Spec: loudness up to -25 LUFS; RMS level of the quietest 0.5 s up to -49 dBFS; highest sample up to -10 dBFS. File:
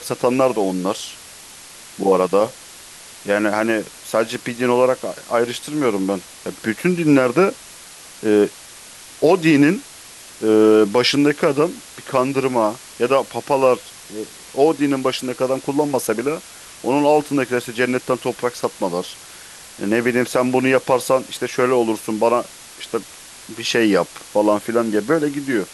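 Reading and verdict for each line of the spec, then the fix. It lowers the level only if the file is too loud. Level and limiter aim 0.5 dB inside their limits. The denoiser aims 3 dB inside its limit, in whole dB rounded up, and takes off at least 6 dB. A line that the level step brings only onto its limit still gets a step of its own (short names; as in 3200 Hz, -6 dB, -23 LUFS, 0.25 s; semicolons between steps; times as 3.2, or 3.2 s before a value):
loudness -19.0 LUFS: fail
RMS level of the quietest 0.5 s -40 dBFS: fail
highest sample -3.5 dBFS: fail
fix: denoiser 6 dB, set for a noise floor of -40 dBFS; gain -6.5 dB; limiter -10.5 dBFS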